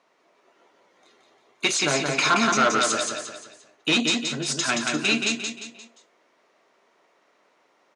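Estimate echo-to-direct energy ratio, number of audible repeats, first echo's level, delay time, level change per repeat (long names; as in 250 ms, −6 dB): −3.0 dB, 4, −4.0 dB, 175 ms, −7.5 dB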